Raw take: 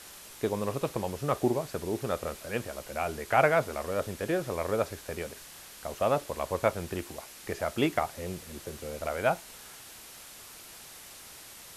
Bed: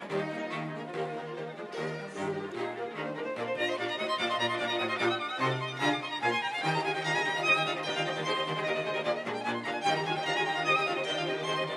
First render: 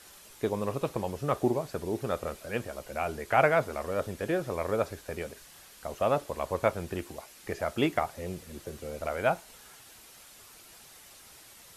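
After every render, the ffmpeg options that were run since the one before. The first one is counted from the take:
-af "afftdn=nr=6:nf=-49"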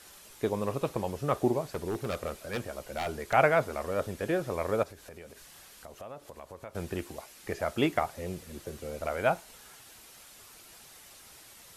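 -filter_complex "[0:a]asettb=1/sr,asplit=3[s0][s1][s2];[s0]atrim=end=1.714[s3];[s1]atrim=start=1.71:end=3.33,asetpts=PTS-STARTPTS,afade=t=in:d=0.004:c=qsin,afade=t=out:st=1.616:d=0.004:c=qsin,aeval=exprs='0.0531*(abs(mod(val(0)/0.0531+3,4)-2)-1)':c=same[s4];[s2]atrim=start=3.326[s5];[s3][s4]acrossfade=d=0.004:c1=hsin:c2=qsin[s6];[s6][s5]acrossfade=d=0.004:c1=qsin:c2=hsin,asettb=1/sr,asplit=3[s7][s8][s9];[s7]atrim=end=4.834[s10];[s8]atrim=start=4.83:end=6.75,asetpts=PTS-STARTPTS,afade=t=in:d=0.004:c=qsin,afade=t=out:st=1.916:d=0.004:c=qsin,acompressor=threshold=0.00501:ratio=3:attack=3.2:release=140:knee=1:detection=peak[s11];[s9]atrim=start=6.746[s12];[s10][s11]acrossfade=d=0.004:c1=hsin:c2=qsin[s13];[s13][s12]acrossfade=d=0.004:c1=qsin:c2=hsin"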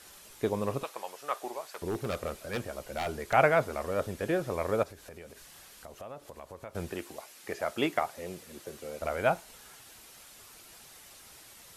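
-filter_complex "[0:a]asettb=1/sr,asplit=3[s0][s1][s2];[s0]atrim=end=0.834[s3];[s1]atrim=start=0.83:end=1.82,asetpts=PTS-STARTPTS,afade=t=in:d=0.004:c=qsin,afade=t=out:st=0.986:d=0.004:c=qsin,highpass=840[s4];[s2]atrim=start=1.816[s5];[s3][s4]acrossfade=d=0.004:c1=hsin:c2=qsin[s6];[s6][s5]acrossfade=d=0.004:c1=qsin:c2=hsin,asettb=1/sr,asplit=3[s7][s8][s9];[s7]atrim=end=6.914[s10];[s8]atrim=start=6.91:end=9.02,asetpts=PTS-STARTPTS,afade=t=in:d=0.004:c=qsin,afade=t=out:st=2.106:d=0.004:c=qsin,highpass=f=310:p=1[s11];[s9]atrim=start=9.016[s12];[s10][s11]acrossfade=d=0.004:c1=hsin:c2=qsin[s13];[s13][s12]acrossfade=d=0.004:c1=qsin:c2=hsin"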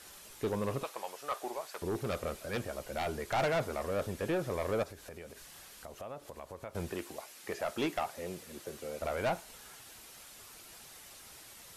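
-af "asoftclip=type=tanh:threshold=0.0473"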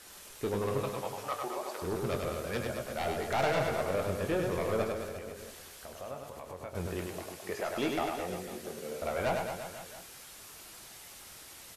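-filter_complex "[0:a]asplit=2[s0][s1];[s1]adelay=22,volume=0.299[s2];[s0][s2]amix=inputs=2:normalize=0,aecho=1:1:100|215|347.2|499.3|674.2:0.631|0.398|0.251|0.158|0.1"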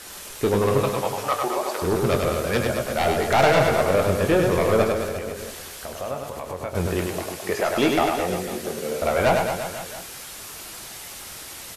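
-af "volume=3.98"

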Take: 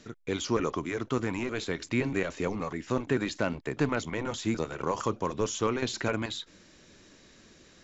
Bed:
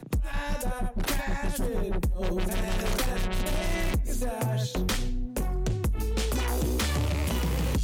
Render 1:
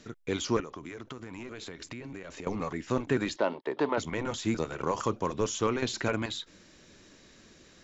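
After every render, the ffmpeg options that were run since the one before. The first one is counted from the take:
-filter_complex "[0:a]asettb=1/sr,asplit=3[s0][s1][s2];[s0]atrim=end=0.604[s3];[s1]atrim=start=0.6:end=2.47,asetpts=PTS-STARTPTS,afade=t=in:d=0.004:c=qsin,afade=t=out:st=1.866:d=0.004:c=qsin,acompressor=threshold=0.0141:ratio=12:attack=3.2:release=140:knee=1:detection=peak[s4];[s2]atrim=start=2.466[s5];[s3][s4]acrossfade=d=0.004:c1=hsin:c2=qsin[s6];[s6][s5]acrossfade=d=0.004:c1=qsin:c2=hsin,asettb=1/sr,asplit=3[s7][s8][s9];[s7]atrim=end=3.364[s10];[s8]atrim=start=3.36:end=3.98,asetpts=PTS-STARTPTS,afade=t=in:d=0.004:c=qsin,afade=t=out:st=0.616:d=0.004:c=qsin,highpass=320,equalizer=f=380:t=q:w=4:g=5,equalizer=f=570:t=q:w=4:g=4,equalizer=f=920:t=q:w=4:g=8,equalizer=f=1500:t=q:w=4:g=-4,equalizer=f=2400:t=q:w=4:g=-7,equalizer=f=3400:t=q:w=4:g=3,lowpass=f=4500:w=0.5412,lowpass=f=4500:w=1.3066[s11];[s9]atrim=start=3.976[s12];[s10][s11]acrossfade=d=0.004:c1=hsin:c2=qsin[s13];[s13][s12]acrossfade=d=0.004:c1=qsin:c2=hsin"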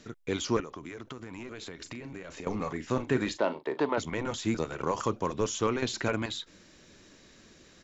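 -filter_complex "[0:a]asplit=3[s0][s1][s2];[s0]afade=t=out:st=1.84:d=0.02[s3];[s1]asplit=2[s4][s5];[s5]adelay=38,volume=0.251[s6];[s4][s6]amix=inputs=2:normalize=0,afade=t=in:st=1.84:d=0.02,afade=t=out:st=3.79:d=0.02[s7];[s2]afade=t=in:st=3.79:d=0.02[s8];[s3][s7][s8]amix=inputs=3:normalize=0"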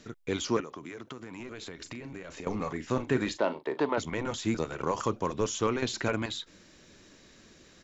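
-filter_complex "[0:a]asettb=1/sr,asplit=3[s0][s1][s2];[s0]atrim=end=0.494[s3];[s1]atrim=start=0.49:end=1.4,asetpts=PTS-STARTPTS,afade=t=in:d=0.004:c=qsin,afade=t=out:st=0.906:d=0.004:c=qsin,highpass=120[s4];[s2]atrim=start=1.396[s5];[s3][s4]acrossfade=d=0.004:c1=hsin:c2=qsin[s6];[s6][s5]acrossfade=d=0.004:c1=qsin:c2=hsin"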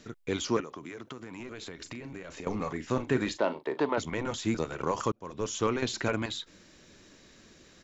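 -filter_complex "[0:a]asplit=2[s0][s1];[s0]atrim=end=5.12,asetpts=PTS-STARTPTS,afade=t=out:st=5.116:d=0.004:c=hsin[s2];[s1]atrim=start=5.12,asetpts=PTS-STARTPTS,afade=t=in:d=0.48[s3];[s2][s3]concat=n=2:v=0:a=1"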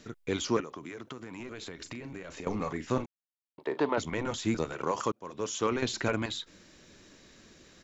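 -filter_complex "[0:a]asettb=1/sr,asplit=3[s0][s1][s2];[s0]atrim=end=4.724[s3];[s1]atrim=start=4.72:end=5.72,asetpts=PTS-STARTPTS,afade=t=in:d=0.004:c=qsin,afade=t=out:st=0.996:d=0.004:c=qsin,highpass=f=200:p=1[s4];[s2]atrim=start=5.716[s5];[s3][s4]acrossfade=d=0.004:c1=hsin:c2=qsin[s6];[s6][s5]acrossfade=d=0.004:c1=qsin:c2=hsin,asplit=3[s7][s8][s9];[s7]atrim=end=3.06,asetpts=PTS-STARTPTS,afade=t=out:st=3.056:d=0.004:c=hsin[s10];[s8]atrim=start=3.06:end=3.58,asetpts=PTS-STARTPTS,volume=0[s11];[s9]atrim=start=3.58,asetpts=PTS-STARTPTS,afade=t=in:d=0.004:c=hsin[s12];[s10][s11][s12]concat=n=3:v=0:a=1"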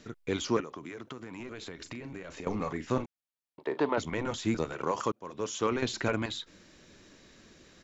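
-af "highshelf=f=6700:g=-4.5"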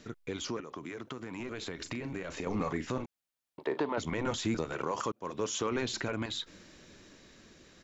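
-af "alimiter=level_in=1.19:limit=0.0631:level=0:latency=1:release=174,volume=0.841,dynaudnorm=f=220:g=13:m=1.58"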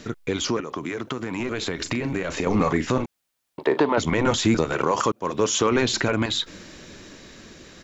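-af "volume=3.98"

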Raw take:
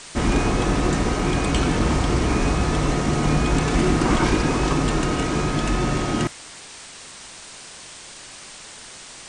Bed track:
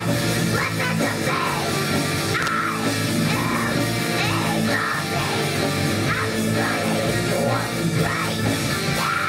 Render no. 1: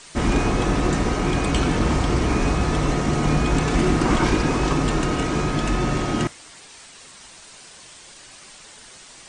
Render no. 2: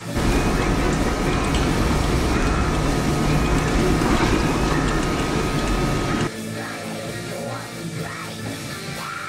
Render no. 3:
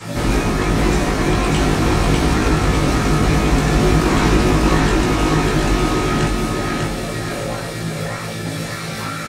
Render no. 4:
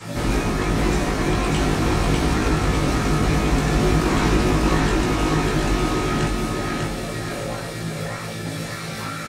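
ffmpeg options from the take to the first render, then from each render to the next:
-af "afftdn=nr=6:nf=-41"
-filter_complex "[1:a]volume=0.398[s0];[0:a][s0]amix=inputs=2:normalize=0"
-filter_complex "[0:a]asplit=2[s0][s1];[s1]adelay=19,volume=0.708[s2];[s0][s2]amix=inputs=2:normalize=0,asplit=2[s3][s4];[s4]aecho=0:1:596|1192|1788|2384|2980|3576:0.708|0.319|0.143|0.0645|0.029|0.0131[s5];[s3][s5]amix=inputs=2:normalize=0"
-af "volume=0.631"

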